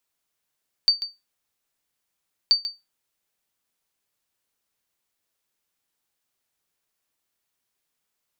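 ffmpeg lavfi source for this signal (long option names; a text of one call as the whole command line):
ffmpeg -f lavfi -i "aevalsrc='0.355*(sin(2*PI*4600*mod(t,1.63))*exp(-6.91*mod(t,1.63)/0.21)+0.237*sin(2*PI*4600*max(mod(t,1.63)-0.14,0))*exp(-6.91*max(mod(t,1.63)-0.14,0)/0.21))':duration=3.26:sample_rate=44100" out.wav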